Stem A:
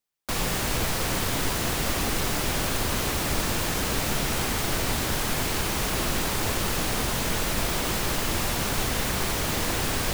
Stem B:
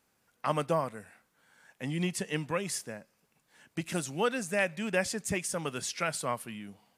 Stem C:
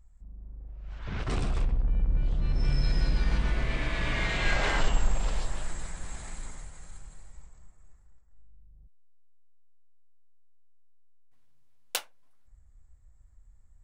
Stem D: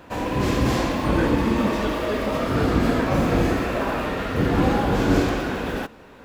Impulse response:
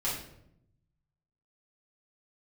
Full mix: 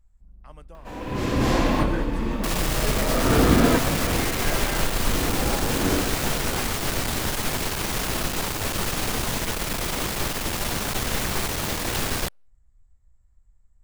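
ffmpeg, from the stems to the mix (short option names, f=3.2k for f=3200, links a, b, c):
-filter_complex "[0:a]aeval=exprs='clip(val(0),-1,0.0335)':c=same,adelay=2150,volume=2dB[a];[1:a]volume=-19.5dB,asplit=2[b][c];[2:a]volume=-5dB,asplit=2[d][e];[e]volume=-16dB[f];[3:a]acompressor=mode=upward:threshold=-35dB:ratio=2.5,adelay=750,volume=2.5dB[g];[c]apad=whole_len=308367[h];[g][h]sidechaincompress=threshold=-59dB:ratio=4:attack=21:release=732[i];[4:a]atrim=start_sample=2205[j];[f][j]afir=irnorm=-1:irlink=0[k];[a][b][d][i][k]amix=inputs=5:normalize=0"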